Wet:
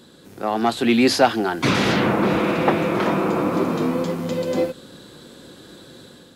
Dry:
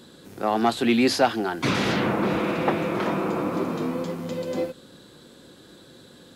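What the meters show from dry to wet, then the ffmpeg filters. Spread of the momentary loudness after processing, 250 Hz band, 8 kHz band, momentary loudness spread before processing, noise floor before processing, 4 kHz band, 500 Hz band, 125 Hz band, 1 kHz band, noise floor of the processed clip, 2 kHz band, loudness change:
8 LU, +4.5 dB, +4.0 dB, 9 LU, −50 dBFS, +4.0 dB, +4.5 dB, +5.0 dB, +4.0 dB, −48 dBFS, +4.5 dB, +4.5 dB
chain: -af "dynaudnorm=framelen=550:gausssize=3:maxgain=6dB"

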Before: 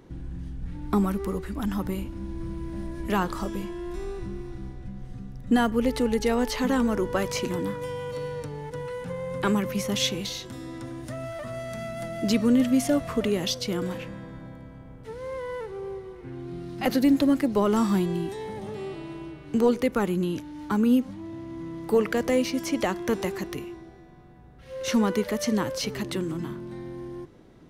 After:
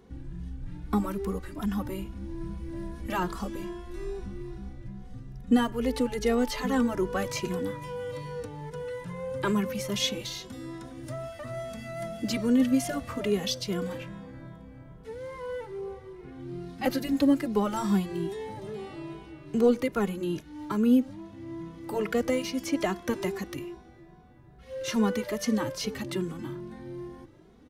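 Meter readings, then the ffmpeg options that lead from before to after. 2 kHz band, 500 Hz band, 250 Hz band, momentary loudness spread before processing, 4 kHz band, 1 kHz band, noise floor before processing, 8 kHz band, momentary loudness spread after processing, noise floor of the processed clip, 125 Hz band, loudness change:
−3.0 dB, −3.0 dB, −3.0 dB, 17 LU, −2.5 dB, −3.0 dB, −46 dBFS, −3.0 dB, 17 LU, −51 dBFS, −3.5 dB, −3.0 dB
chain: -filter_complex "[0:a]asplit=2[link_01][link_02];[link_02]adelay=2.4,afreqshift=2.4[link_03];[link_01][link_03]amix=inputs=2:normalize=1"

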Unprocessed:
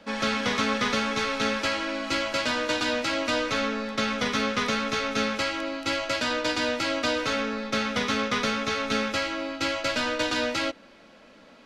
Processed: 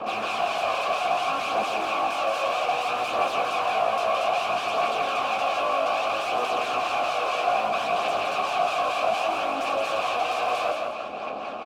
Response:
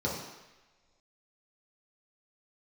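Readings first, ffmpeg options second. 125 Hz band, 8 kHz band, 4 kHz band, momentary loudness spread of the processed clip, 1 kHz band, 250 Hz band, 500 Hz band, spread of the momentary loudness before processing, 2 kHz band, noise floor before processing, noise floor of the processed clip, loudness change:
−9.5 dB, −5.5 dB, −3.5 dB, 2 LU, +7.5 dB, −12.0 dB, +3.0 dB, 3 LU, −2.0 dB, −52 dBFS, −32 dBFS, +1.0 dB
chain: -filter_complex "[0:a]lowshelf=frequency=450:gain=9,bandreject=frequency=61.71:width_type=h:width=4,bandreject=frequency=123.42:width_type=h:width=4,bandreject=frequency=185.13:width_type=h:width=4,bandreject=frequency=246.84:width_type=h:width=4,bandreject=frequency=308.55:width_type=h:width=4,bandreject=frequency=370.26:width_type=h:width=4,bandreject=frequency=431.97:width_type=h:width=4,bandreject=frequency=493.68:width_type=h:width=4,bandreject=frequency=555.39:width_type=h:width=4,bandreject=frequency=617.1:width_type=h:width=4,bandreject=frequency=678.81:width_type=h:width=4,asplit=2[link_01][link_02];[link_02]alimiter=level_in=1dB:limit=-24dB:level=0:latency=1,volume=-1dB,volume=1dB[link_03];[link_01][link_03]amix=inputs=2:normalize=0,acrossover=split=480[link_04][link_05];[link_04]aeval=exprs='val(0)*(1-0.7/2+0.7/2*cos(2*PI*4.4*n/s))':channel_layout=same[link_06];[link_05]aeval=exprs='val(0)*(1-0.7/2-0.7/2*cos(2*PI*4.4*n/s))':channel_layout=same[link_07];[link_06][link_07]amix=inputs=2:normalize=0,aeval=exprs='0.237*sin(PI/2*6.31*val(0)/0.237)':channel_layout=same,aeval=exprs='0.237*(cos(1*acos(clip(val(0)/0.237,-1,1)))-cos(1*PI/2))+0.075*(cos(8*acos(clip(val(0)/0.237,-1,1)))-cos(8*PI/2))':channel_layout=same,aphaser=in_gain=1:out_gain=1:delay=2:decay=0.32:speed=0.62:type=triangular,acrusher=bits=6:mix=0:aa=0.000001,asplit=3[link_08][link_09][link_10];[link_08]bandpass=frequency=730:width_type=q:width=8,volume=0dB[link_11];[link_09]bandpass=frequency=1090:width_type=q:width=8,volume=-6dB[link_12];[link_10]bandpass=frequency=2440:width_type=q:width=8,volume=-9dB[link_13];[link_11][link_12][link_13]amix=inputs=3:normalize=0,aecho=1:1:167|334|501|668:0.562|0.197|0.0689|0.0241"

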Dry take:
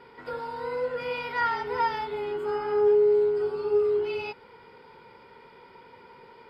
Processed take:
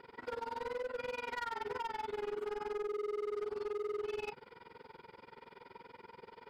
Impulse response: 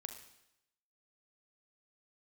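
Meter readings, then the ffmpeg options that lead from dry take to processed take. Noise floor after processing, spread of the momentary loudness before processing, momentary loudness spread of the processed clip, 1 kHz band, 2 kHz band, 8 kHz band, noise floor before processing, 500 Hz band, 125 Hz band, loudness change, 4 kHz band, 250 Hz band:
−62 dBFS, 14 LU, 17 LU, −11.5 dB, −11.0 dB, can't be measured, −53 dBFS, −14.0 dB, below −10 dB, −13.5 dB, −8.5 dB, −11.0 dB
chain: -filter_complex "[0:a]acrossover=split=3000[link_01][link_02];[link_02]acompressor=threshold=-52dB:ratio=4:attack=1:release=60[link_03];[link_01][link_03]amix=inputs=2:normalize=0,bandreject=frequency=50:width_type=h:width=6,bandreject=frequency=100:width_type=h:width=6,bandreject=frequency=150:width_type=h:width=6,alimiter=level_in=1.5dB:limit=-24dB:level=0:latency=1:release=218,volume=-1.5dB,tremolo=f=21:d=0.947,asoftclip=type=hard:threshold=-35dB"

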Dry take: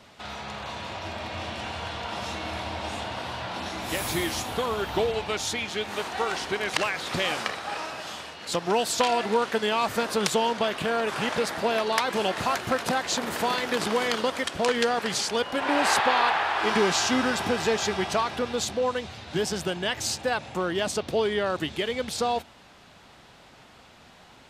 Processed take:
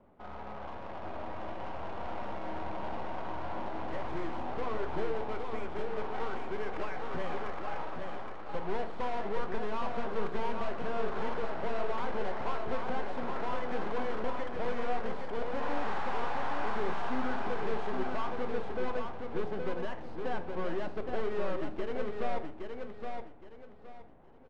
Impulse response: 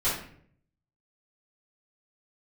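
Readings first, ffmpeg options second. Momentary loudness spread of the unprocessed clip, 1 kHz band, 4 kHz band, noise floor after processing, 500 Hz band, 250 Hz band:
10 LU, −8.5 dB, −21.0 dB, −45 dBFS, −8.5 dB, −8.5 dB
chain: -filter_complex "[0:a]lowpass=3700,equalizer=frequency=120:width=0.69:gain=-9,aeval=exprs='(tanh(39.8*val(0)+0.4)-tanh(0.4))/39.8':channel_layout=same,adynamicsmooth=sensitivity=2.5:basefreq=510,aecho=1:1:818|1636|2454|3272:0.562|0.157|0.0441|0.0123,asplit=2[link_01][link_02];[1:a]atrim=start_sample=2205[link_03];[link_02][link_03]afir=irnorm=-1:irlink=0,volume=-18dB[link_04];[link_01][link_04]amix=inputs=2:normalize=0"

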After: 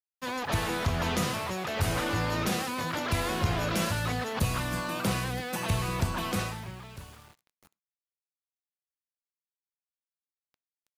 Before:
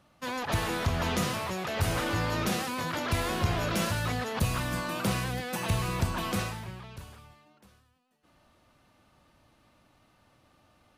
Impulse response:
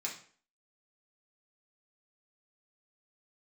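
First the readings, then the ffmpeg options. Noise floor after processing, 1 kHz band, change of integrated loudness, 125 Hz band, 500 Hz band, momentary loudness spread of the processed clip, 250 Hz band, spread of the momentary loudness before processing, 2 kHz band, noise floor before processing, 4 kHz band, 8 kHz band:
below −85 dBFS, +0.5 dB, +0.5 dB, 0.0 dB, 0.0 dB, 8 LU, 0.0 dB, 8 LU, +0.5 dB, −66 dBFS, +0.5 dB, +0.5 dB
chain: -filter_complex "[0:a]aeval=exprs='val(0)*gte(abs(val(0)),0.00282)':channel_layout=same,asplit=2[link_01][link_02];[1:a]atrim=start_sample=2205,afade=type=out:start_time=0.17:duration=0.01,atrim=end_sample=7938[link_03];[link_02][link_03]afir=irnorm=-1:irlink=0,volume=-21dB[link_04];[link_01][link_04]amix=inputs=2:normalize=0"

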